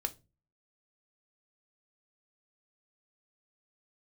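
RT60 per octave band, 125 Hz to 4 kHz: 0.55, 0.45, 0.35, 0.25, 0.20, 0.20 s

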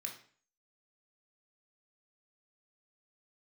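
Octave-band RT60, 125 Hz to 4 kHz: 0.50, 0.50, 0.45, 0.45, 0.45, 0.40 s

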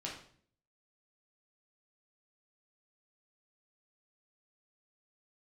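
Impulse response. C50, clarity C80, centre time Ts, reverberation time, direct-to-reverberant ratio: 5.0 dB, 9.5 dB, 34 ms, 0.55 s, -4.0 dB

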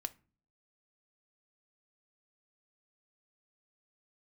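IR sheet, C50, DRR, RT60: 21.5 dB, 9.0 dB, 0.35 s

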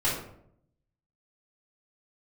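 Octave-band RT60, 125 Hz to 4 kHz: 1.0, 0.85, 0.75, 0.65, 0.50, 0.40 s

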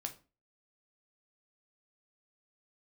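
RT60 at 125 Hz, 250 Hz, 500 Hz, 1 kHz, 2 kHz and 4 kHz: 0.35, 0.40, 0.35, 0.30, 0.30, 0.25 s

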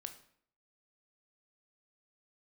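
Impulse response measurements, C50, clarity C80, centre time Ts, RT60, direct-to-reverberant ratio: 11.5 dB, 15.0 dB, 10 ms, 0.60 s, 6.5 dB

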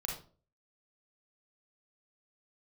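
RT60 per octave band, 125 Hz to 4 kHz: 0.55, 0.50, 0.45, 0.35, 0.30, 0.30 s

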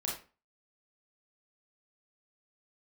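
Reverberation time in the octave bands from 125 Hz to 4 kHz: 0.35, 0.40, 0.35, 0.35, 0.30, 0.25 s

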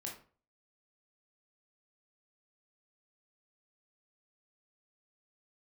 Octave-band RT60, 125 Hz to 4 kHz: 0.50, 0.40, 0.45, 0.40, 0.35, 0.30 s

